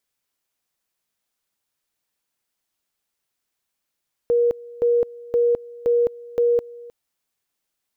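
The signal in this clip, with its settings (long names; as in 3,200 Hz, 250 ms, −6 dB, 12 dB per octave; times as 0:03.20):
tone at two levels in turn 476 Hz −14.5 dBFS, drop 21.5 dB, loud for 0.21 s, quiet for 0.31 s, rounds 5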